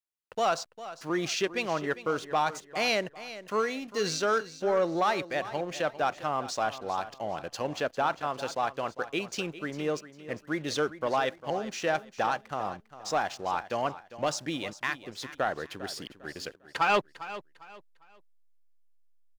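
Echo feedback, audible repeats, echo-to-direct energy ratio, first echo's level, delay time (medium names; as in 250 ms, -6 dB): 30%, 2, -14.0 dB, -14.5 dB, 401 ms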